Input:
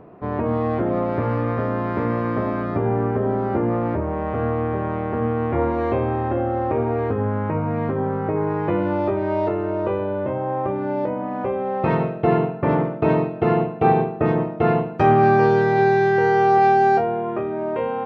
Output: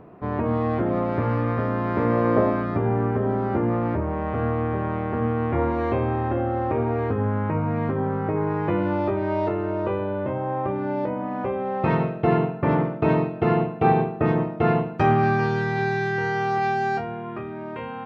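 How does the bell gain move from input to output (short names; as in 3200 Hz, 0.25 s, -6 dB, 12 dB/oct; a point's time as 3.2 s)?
bell 530 Hz 1.5 oct
1.81 s -3 dB
2.39 s +8 dB
2.66 s -3.5 dB
14.92 s -3.5 dB
15.45 s -13.5 dB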